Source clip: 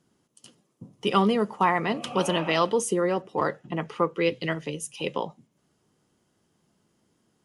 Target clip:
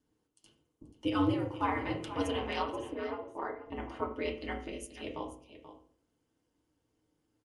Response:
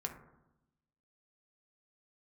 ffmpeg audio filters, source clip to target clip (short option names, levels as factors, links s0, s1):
-filter_complex "[0:a]asettb=1/sr,asplit=3[s0][s1][s2];[s0]atrim=end=2.624[s3];[s1]atrim=start=2.62:end=3.66,asetpts=PTS-STARTPTS,afade=t=in:d=0.004:c=qsin,afade=t=out:st=1.036:d=0.004:c=qsin,acrossover=split=460 2300:gain=0.251 1 0.141[s4][s5][s6];[s4][s5][s6]amix=inputs=3:normalize=0[s7];[s2]atrim=start=3.656[s8];[s3][s7]acrossfade=d=0.004:c1=hsin:c2=qsin[s9];[s9][s8]acrossfade=d=0.004:c1=qsin:c2=hsin,aeval=exprs='val(0)*sin(2*PI*100*n/s)':c=same,aecho=1:1:483:0.224[s10];[1:a]atrim=start_sample=2205,asetrate=88200,aresample=44100[s11];[s10][s11]afir=irnorm=-1:irlink=0,volume=0.841"